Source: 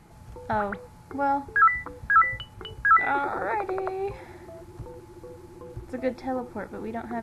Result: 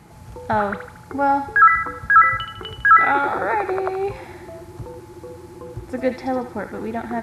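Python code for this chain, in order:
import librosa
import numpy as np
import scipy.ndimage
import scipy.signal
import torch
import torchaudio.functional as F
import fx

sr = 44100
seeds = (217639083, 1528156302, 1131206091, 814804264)

y = scipy.signal.sosfilt(scipy.signal.butter(2, 54.0, 'highpass', fs=sr, output='sos'), x)
y = fx.echo_wet_highpass(y, sr, ms=77, feedback_pct=53, hz=1500.0, wet_db=-6.0)
y = y * 10.0 ** (6.5 / 20.0)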